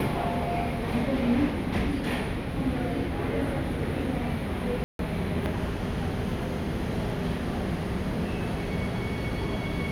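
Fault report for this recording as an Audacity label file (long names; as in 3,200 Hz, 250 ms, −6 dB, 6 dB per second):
4.840000	4.990000	drop-out 152 ms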